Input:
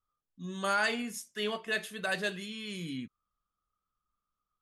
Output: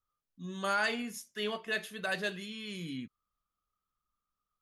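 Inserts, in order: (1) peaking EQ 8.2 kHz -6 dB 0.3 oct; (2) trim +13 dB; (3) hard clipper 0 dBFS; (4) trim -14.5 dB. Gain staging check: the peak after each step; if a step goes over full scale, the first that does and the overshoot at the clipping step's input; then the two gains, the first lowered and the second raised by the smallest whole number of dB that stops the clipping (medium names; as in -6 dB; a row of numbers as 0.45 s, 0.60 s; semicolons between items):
-17.0 dBFS, -4.0 dBFS, -4.0 dBFS, -18.5 dBFS; nothing clips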